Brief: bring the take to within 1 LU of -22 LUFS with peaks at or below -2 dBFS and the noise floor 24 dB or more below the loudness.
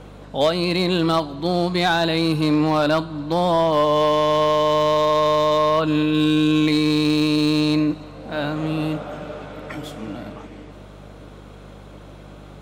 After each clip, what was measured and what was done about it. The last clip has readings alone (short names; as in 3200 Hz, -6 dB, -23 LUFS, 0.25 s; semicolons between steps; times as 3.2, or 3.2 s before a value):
clipped 0.5%; flat tops at -10.5 dBFS; hum 50 Hz; harmonics up to 200 Hz; hum level -41 dBFS; loudness -19.5 LUFS; peak -10.5 dBFS; loudness target -22.0 LUFS
-> clip repair -10.5 dBFS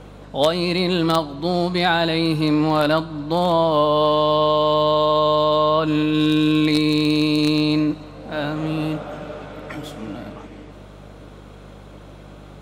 clipped 0.0%; hum 50 Hz; harmonics up to 200 Hz; hum level -41 dBFS
-> de-hum 50 Hz, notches 4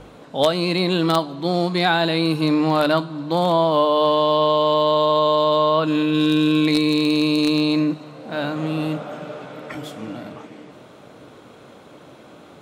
hum none; loudness -19.0 LUFS; peak -1.5 dBFS; loudness target -22.0 LUFS
-> gain -3 dB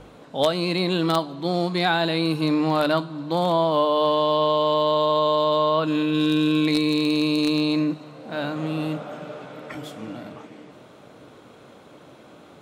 loudness -22.0 LUFS; peak -4.5 dBFS; noise floor -48 dBFS